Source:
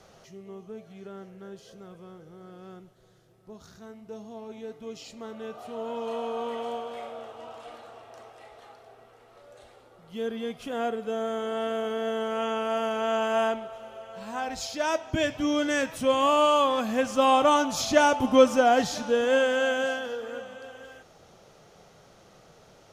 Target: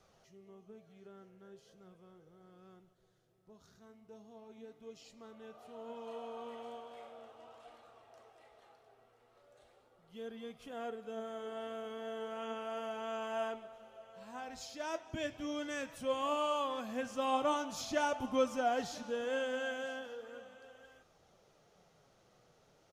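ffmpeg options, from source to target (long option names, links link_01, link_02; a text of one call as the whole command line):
ffmpeg -i in.wav -filter_complex "[0:a]flanger=delay=0.8:depth=7.4:regen=76:speed=0.38:shape=sinusoidal,asplit=2[link_01][link_02];[link_02]aecho=0:1:186:0.0891[link_03];[link_01][link_03]amix=inputs=2:normalize=0,volume=-8.5dB" out.wav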